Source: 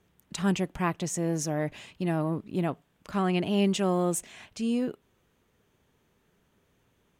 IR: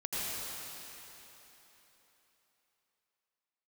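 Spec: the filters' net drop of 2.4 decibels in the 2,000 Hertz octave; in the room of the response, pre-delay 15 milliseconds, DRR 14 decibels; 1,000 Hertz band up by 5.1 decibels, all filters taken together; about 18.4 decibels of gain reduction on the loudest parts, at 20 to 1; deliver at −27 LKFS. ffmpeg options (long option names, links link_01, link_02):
-filter_complex "[0:a]equalizer=frequency=1000:width_type=o:gain=8,equalizer=frequency=2000:width_type=o:gain=-6,acompressor=threshold=-38dB:ratio=20,asplit=2[link_01][link_02];[1:a]atrim=start_sample=2205,adelay=15[link_03];[link_02][link_03]afir=irnorm=-1:irlink=0,volume=-20dB[link_04];[link_01][link_04]amix=inputs=2:normalize=0,volume=16.5dB"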